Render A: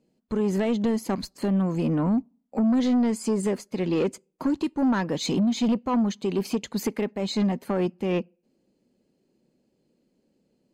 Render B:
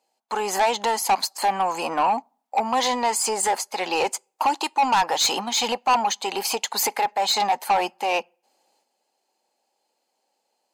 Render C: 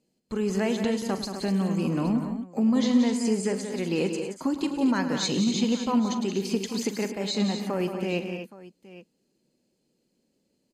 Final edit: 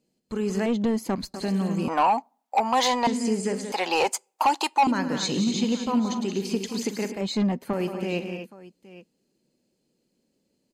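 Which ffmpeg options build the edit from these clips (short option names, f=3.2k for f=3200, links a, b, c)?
-filter_complex "[0:a]asplit=2[a][b];[1:a]asplit=2[c][d];[2:a]asplit=5[e][f][g][h][i];[e]atrim=end=0.662[j];[a]atrim=start=0.658:end=1.342[k];[f]atrim=start=1.338:end=1.882[l];[c]atrim=start=1.878:end=3.072[m];[g]atrim=start=3.068:end=3.722[n];[d]atrim=start=3.718:end=4.872[o];[h]atrim=start=4.868:end=7.212[p];[b]atrim=start=7.208:end=7.732[q];[i]atrim=start=7.728[r];[j][k]acrossfade=d=0.004:c1=hsin:c2=hsin[s];[s][l]acrossfade=d=0.004:c1=hsin:c2=hsin[t];[t][m]acrossfade=d=0.004:c1=hsin:c2=hsin[u];[u][n]acrossfade=d=0.004:c1=hsin:c2=hsin[v];[v][o]acrossfade=d=0.004:c1=hsin:c2=hsin[w];[w][p]acrossfade=d=0.004:c1=hsin:c2=hsin[x];[x][q]acrossfade=d=0.004:c1=hsin:c2=hsin[y];[y][r]acrossfade=d=0.004:c1=hsin:c2=hsin"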